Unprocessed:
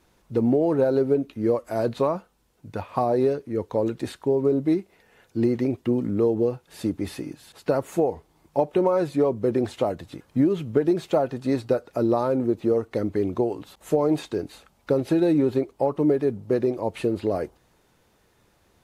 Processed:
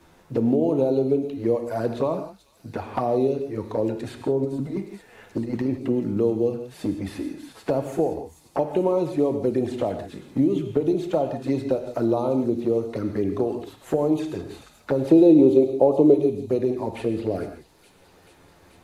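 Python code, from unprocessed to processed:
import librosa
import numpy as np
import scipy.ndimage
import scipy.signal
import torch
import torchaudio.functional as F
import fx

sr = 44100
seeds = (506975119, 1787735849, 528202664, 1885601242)

p1 = fx.over_compress(x, sr, threshold_db=-24.0, ratio=-0.5, at=(4.42, 5.67), fade=0.02)
p2 = fx.peak_eq(p1, sr, hz=440.0, db=11.0, octaves=1.9, at=(15.07, 16.14))
p3 = fx.env_flanger(p2, sr, rest_ms=11.9, full_db=-18.5)
p4 = p3 + fx.echo_wet_highpass(p3, sr, ms=435, feedback_pct=72, hz=4800.0, wet_db=-11, dry=0)
p5 = fx.rev_gated(p4, sr, seeds[0], gate_ms=190, shape='flat', drr_db=6.5)
y = fx.band_squash(p5, sr, depth_pct=40)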